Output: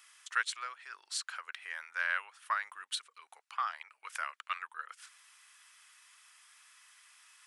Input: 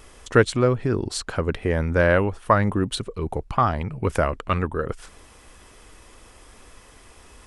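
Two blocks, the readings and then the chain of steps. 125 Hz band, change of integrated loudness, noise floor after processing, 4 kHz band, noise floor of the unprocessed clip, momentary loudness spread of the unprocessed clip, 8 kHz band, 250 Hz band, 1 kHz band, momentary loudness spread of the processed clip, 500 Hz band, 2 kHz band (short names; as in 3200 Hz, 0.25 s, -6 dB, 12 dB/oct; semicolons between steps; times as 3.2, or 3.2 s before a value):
under -40 dB, -15.0 dB, -78 dBFS, -7.0 dB, -50 dBFS, 10 LU, -7.0 dB, under -40 dB, -13.0 dB, 15 LU, -37.5 dB, -8.0 dB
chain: HPF 1300 Hz 24 dB/oct; gain -7 dB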